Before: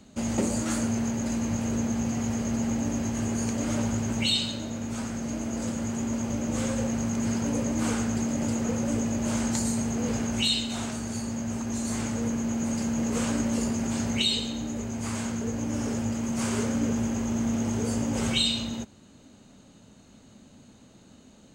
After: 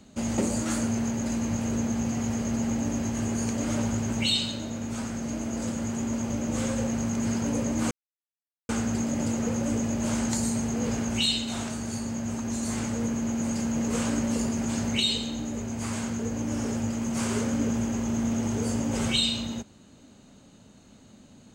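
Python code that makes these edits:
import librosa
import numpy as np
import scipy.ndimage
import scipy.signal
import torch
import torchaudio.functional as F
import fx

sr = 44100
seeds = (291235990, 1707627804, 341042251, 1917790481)

y = fx.edit(x, sr, fx.insert_silence(at_s=7.91, length_s=0.78), tone=tone)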